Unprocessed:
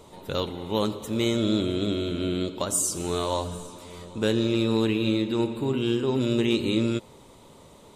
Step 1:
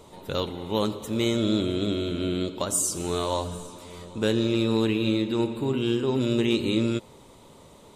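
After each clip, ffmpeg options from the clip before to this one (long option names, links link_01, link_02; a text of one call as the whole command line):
ffmpeg -i in.wav -af anull out.wav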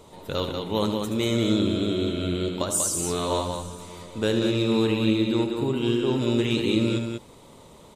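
ffmpeg -i in.wav -af "aecho=1:1:75.8|189.5:0.355|0.562" out.wav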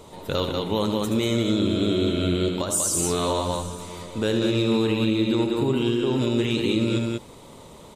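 ffmpeg -i in.wav -af "alimiter=limit=-16.5dB:level=0:latency=1:release=173,volume=4dB" out.wav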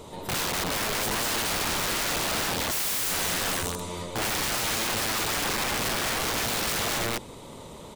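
ffmpeg -i in.wav -af "aeval=exprs='(mod(17.8*val(0)+1,2)-1)/17.8':channel_layout=same,volume=2dB" out.wav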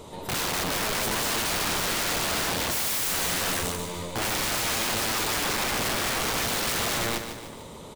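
ffmpeg -i in.wav -af "aecho=1:1:149|298|447|596|745:0.355|0.17|0.0817|0.0392|0.0188" out.wav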